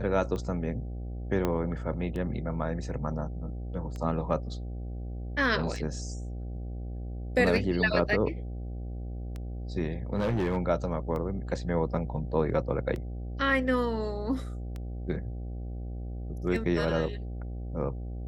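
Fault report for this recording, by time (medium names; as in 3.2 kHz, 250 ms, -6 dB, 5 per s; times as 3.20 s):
buzz 60 Hz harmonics 13 -36 dBFS
tick 33 1/3 rpm -25 dBFS
1.45 s: pop -15 dBFS
10.15–10.58 s: clipped -23.5 dBFS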